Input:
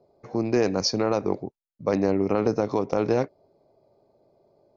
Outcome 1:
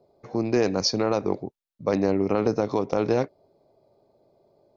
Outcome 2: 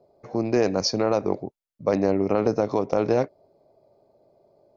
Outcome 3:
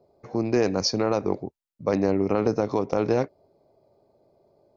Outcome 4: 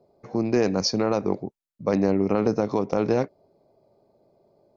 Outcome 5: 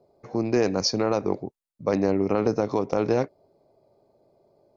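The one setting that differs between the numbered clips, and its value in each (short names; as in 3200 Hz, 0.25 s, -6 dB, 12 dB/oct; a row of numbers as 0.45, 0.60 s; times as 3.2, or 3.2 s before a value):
bell, frequency: 3600, 620, 75, 200, 9300 Hz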